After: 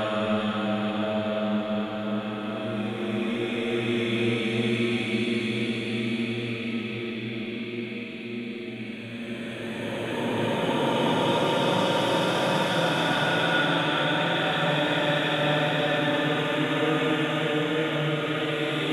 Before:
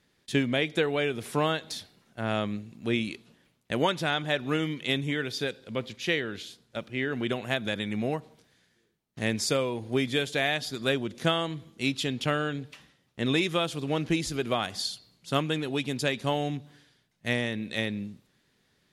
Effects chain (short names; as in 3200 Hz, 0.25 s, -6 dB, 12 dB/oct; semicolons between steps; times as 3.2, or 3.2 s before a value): reverse delay 0.22 s, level -13 dB; high shelf 8200 Hz +7 dB; spring tank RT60 2.5 s, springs 42/53 ms, chirp 25 ms, DRR -1 dB; Paulstretch 7.9×, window 0.50 s, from 2.42